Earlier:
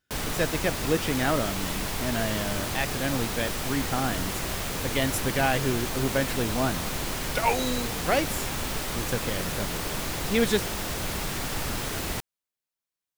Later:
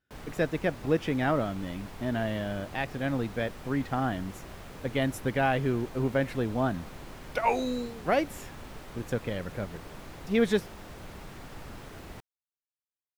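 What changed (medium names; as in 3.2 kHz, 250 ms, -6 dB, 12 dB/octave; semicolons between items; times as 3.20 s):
background -11.5 dB; master: add treble shelf 3 kHz -12 dB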